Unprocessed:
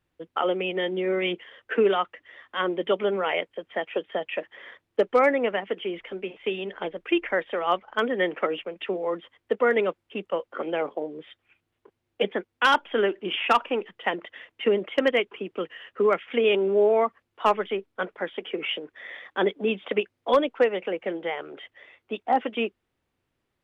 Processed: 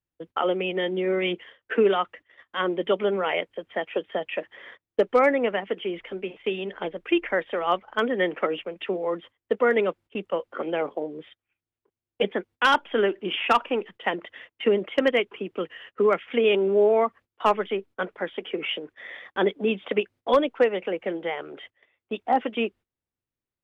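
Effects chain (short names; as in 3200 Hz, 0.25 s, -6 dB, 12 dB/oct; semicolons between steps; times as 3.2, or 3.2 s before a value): gate -46 dBFS, range -17 dB; low shelf 200 Hz +4.5 dB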